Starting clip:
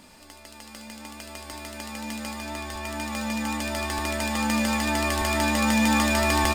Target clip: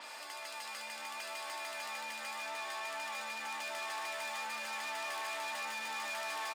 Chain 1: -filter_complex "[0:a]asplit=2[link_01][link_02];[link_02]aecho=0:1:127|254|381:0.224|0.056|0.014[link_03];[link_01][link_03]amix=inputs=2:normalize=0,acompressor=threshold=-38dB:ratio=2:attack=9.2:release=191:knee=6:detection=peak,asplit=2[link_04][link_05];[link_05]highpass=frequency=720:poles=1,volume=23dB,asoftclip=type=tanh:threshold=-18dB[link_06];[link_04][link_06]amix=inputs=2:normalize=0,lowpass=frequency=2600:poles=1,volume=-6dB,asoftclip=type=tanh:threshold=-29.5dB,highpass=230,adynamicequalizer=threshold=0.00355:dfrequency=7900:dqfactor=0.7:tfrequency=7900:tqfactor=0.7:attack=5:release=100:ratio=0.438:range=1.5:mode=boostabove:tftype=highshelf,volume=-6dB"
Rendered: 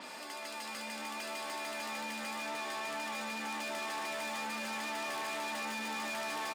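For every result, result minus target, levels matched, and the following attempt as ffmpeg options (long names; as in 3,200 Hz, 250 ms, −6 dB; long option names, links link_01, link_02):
250 Hz band +13.5 dB; downward compressor: peak gain reduction −3.5 dB
-filter_complex "[0:a]asplit=2[link_01][link_02];[link_02]aecho=0:1:127|254|381:0.224|0.056|0.014[link_03];[link_01][link_03]amix=inputs=2:normalize=0,acompressor=threshold=-38dB:ratio=2:attack=9.2:release=191:knee=6:detection=peak,asplit=2[link_04][link_05];[link_05]highpass=frequency=720:poles=1,volume=23dB,asoftclip=type=tanh:threshold=-18dB[link_06];[link_04][link_06]amix=inputs=2:normalize=0,lowpass=frequency=2600:poles=1,volume=-6dB,asoftclip=type=tanh:threshold=-29.5dB,highpass=650,adynamicequalizer=threshold=0.00355:dfrequency=7900:dqfactor=0.7:tfrequency=7900:tqfactor=0.7:attack=5:release=100:ratio=0.438:range=1.5:mode=boostabove:tftype=highshelf,volume=-6dB"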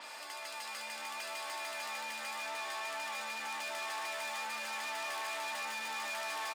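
downward compressor: peak gain reduction −3.5 dB
-filter_complex "[0:a]asplit=2[link_01][link_02];[link_02]aecho=0:1:127|254|381:0.224|0.056|0.014[link_03];[link_01][link_03]amix=inputs=2:normalize=0,acompressor=threshold=-44.5dB:ratio=2:attack=9.2:release=191:knee=6:detection=peak,asplit=2[link_04][link_05];[link_05]highpass=frequency=720:poles=1,volume=23dB,asoftclip=type=tanh:threshold=-18dB[link_06];[link_04][link_06]amix=inputs=2:normalize=0,lowpass=frequency=2600:poles=1,volume=-6dB,asoftclip=type=tanh:threshold=-29.5dB,highpass=650,adynamicequalizer=threshold=0.00355:dfrequency=7900:dqfactor=0.7:tfrequency=7900:tqfactor=0.7:attack=5:release=100:ratio=0.438:range=1.5:mode=boostabove:tftype=highshelf,volume=-6dB"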